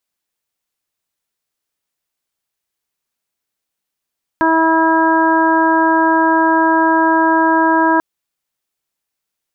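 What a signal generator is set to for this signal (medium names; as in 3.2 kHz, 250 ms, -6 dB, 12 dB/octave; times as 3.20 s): steady additive tone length 3.59 s, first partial 324 Hz, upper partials -5/1.5/-9.5/-3.5 dB, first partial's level -14.5 dB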